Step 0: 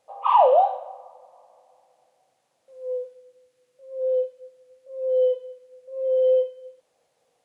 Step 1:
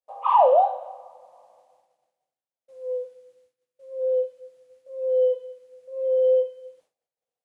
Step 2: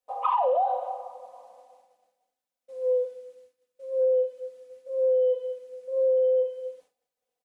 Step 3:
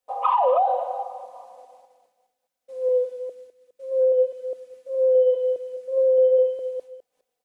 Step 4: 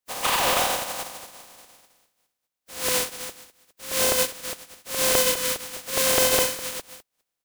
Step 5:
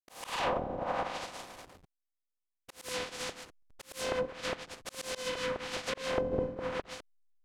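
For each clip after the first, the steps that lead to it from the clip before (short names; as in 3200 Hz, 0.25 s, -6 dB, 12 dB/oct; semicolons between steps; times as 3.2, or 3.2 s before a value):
expander -54 dBFS; dynamic EQ 2900 Hz, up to -5 dB, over -37 dBFS, Q 0.81
comb 4 ms, depth 81%; limiter -14 dBFS, peak gain reduction 11 dB; compressor 5:1, threshold -23 dBFS, peak gain reduction 6.5 dB; gain +2 dB
reverse delay 0.206 s, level -10 dB; gain +4 dB
spectral contrast lowered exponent 0.23; gain -2.5 dB
backlash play -41 dBFS; auto swell 0.66 s; treble ducked by the level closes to 360 Hz, closed at -24 dBFS; gain +3.5 dB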